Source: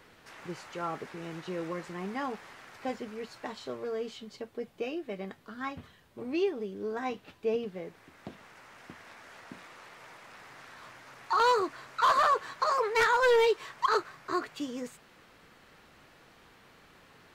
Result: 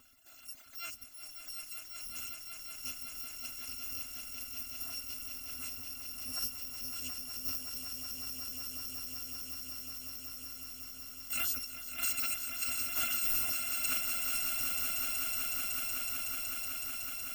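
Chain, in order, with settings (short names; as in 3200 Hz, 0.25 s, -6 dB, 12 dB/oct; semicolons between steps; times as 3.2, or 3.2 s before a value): FFT order left unsorted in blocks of 256 samples; reverb removal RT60 1.9 s; in parallel at -1.5 dB: compressor, threshold -40 dBFS, peak gain reduction 17 dB; on the sum: thirty-one-band EQ 250 Hz +11 dB, 4000 Hz -5 dB, 10000 Hz -9 dB; on a send: swelling echo 0.186 s, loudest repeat 8, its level -8 dB; on the sum: gain -9 dB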